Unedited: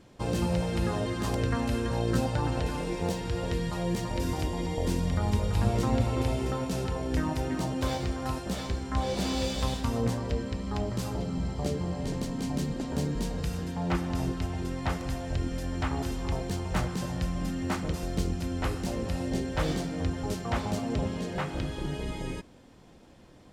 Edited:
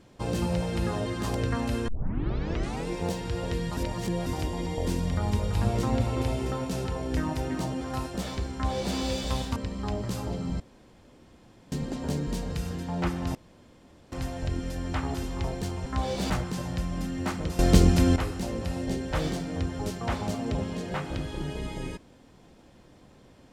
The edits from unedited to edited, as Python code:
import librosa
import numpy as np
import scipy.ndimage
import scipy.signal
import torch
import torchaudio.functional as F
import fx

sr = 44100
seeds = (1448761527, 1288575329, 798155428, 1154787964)

y = fx.edit(x, sr, fx.tape_start(start_s=1.88, length_s=1.0),
    fx.reverse_span(start_s=3.77, length_s=0.49),
    fx.cut(start_s=7.81, length_s=0.32),
    fx.duplicate(start_s=8.85, length_s=0.44, to_s=16.74),
    fx.cut(start_s=9.88, length_s=0.56),
    fx.room_tone_fill(start_s=11.48, length_s=1.12),
    fx.room_tone_fill(start_s=14.23, length_s=0.77),
    fx.clip_gain(start_s=18.03, length_s=0.57, db=11.5), tone=tone)